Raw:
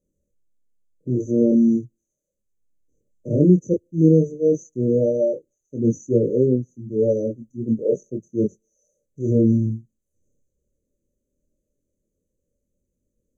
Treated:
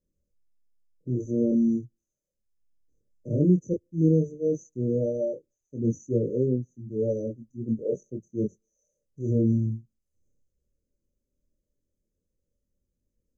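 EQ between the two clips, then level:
Butterworth band-reject 3,000 Hz, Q 1
low-shelf EQ 140 Hz +7.5 dB
parametric band 5,100 Hz +14 dB 0.21 octaves
−8.5 dB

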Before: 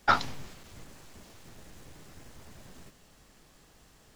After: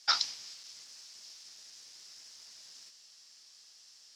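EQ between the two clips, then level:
resonant band-pass 5,200 Hz, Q 4.4
+14.5 dB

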